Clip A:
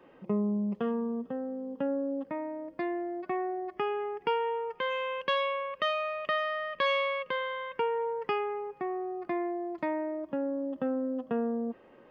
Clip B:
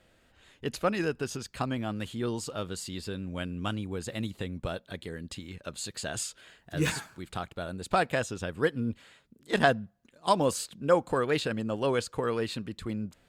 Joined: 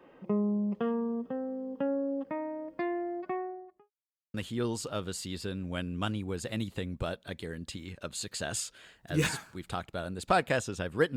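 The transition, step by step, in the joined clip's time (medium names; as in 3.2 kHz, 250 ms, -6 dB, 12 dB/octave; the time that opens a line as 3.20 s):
clip A
3.10–3.91 s: studio fade out
3.91–4.34 s: mute
4.34 s: go over to clip B from 1.97 s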